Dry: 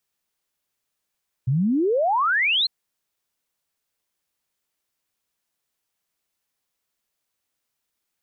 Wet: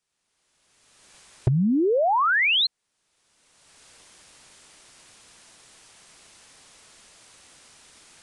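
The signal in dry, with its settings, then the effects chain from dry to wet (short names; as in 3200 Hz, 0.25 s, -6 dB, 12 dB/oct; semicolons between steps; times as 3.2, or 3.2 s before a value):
log sweep 120 Hz -> 4300 Hz 1.20 s -17.5 dBFS
recorder AGC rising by 26 dB/s; hard clip -14 dBFS; downsampling 22050 Hz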